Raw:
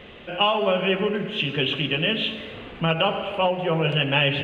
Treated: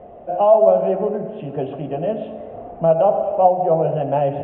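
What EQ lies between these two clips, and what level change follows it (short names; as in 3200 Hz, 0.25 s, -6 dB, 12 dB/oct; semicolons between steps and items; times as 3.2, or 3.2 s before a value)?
synth low-pass 690 Hz, resonance Q 8.5; -1.5 dB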